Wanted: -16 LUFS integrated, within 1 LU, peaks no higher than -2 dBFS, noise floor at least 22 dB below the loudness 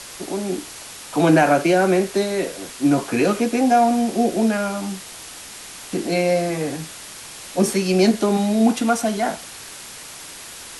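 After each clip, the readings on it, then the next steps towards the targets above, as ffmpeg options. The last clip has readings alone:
noise floor -38 dBFS; noise floor target -42 dBFS; loudness -20.0 LUFS; peak -4.5 dBFS; loudness target -16.0 LUFS
-> -af "afftdn=nr=6:nf=-38"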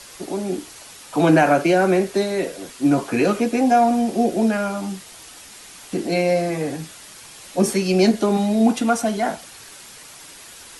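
noise floor -42 dBFS; loudness -20.0 LUFS; peak -4.5 dBFS; loudness target -16.0 LUFS
-> -af "volume=4dB,alimiter=limit=-2dB:level=0:latency=1"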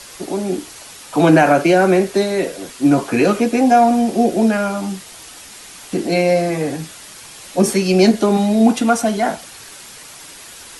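loudness -16.0 LUFS; peak -2.0 dBFS; noise floor -38 dBFS

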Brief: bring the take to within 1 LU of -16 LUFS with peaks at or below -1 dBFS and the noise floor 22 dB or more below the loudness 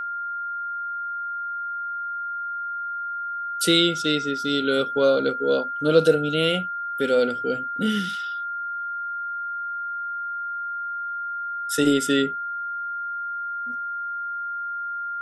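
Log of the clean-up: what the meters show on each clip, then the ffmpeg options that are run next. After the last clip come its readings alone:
steady tone 1400 Hz; tone level -27 dBFS; loudness -25.0 LUFS; peak -4.5 dBFS; loudness target -16.0 LUFS
-> -af "bandreject=f=1.4k:w=30"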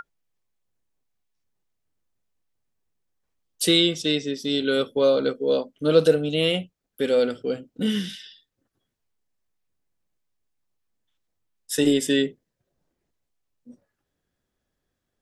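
steady tone none; loudness -22.5 LUFS; peak -5.0 dBFS; loudness target -16.0 LUFS
-> -af "volume=6.5dB,alimiter=limit=-1dB:level=0:latency=1"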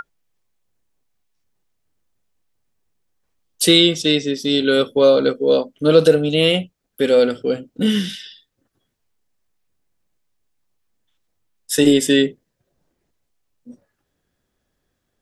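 loudness -16.5 LUFS; peak -1.0 dBFS; noise floor -74 dBFS

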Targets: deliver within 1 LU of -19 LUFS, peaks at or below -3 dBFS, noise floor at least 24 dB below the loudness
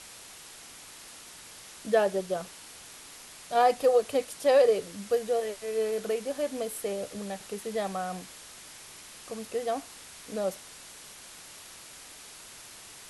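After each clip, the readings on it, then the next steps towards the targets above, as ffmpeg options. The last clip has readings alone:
noise floor -48 dBFS; noise floor target -53 dBFS; loudness -29.0 LUFS; peak -11.0 dBFS; loudness target -19.0 LUFS
-> -af "afftdn=nr=6:nf=-48"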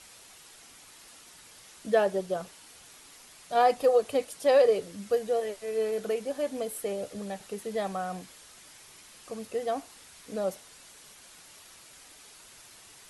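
noise floor -53 dBFS; loudness -29.0 LUFS; peak -11.5 dBFS; loudness target -19.0 LUFS
-> -af "volume=10dB,alimiter=limit=-3dB:level=0:latency=1"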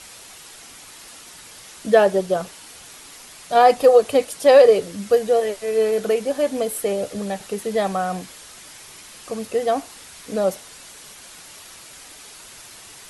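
loudness -19.0 LUFS; peak -3.0 dBFS; noise floor -43 dBFS

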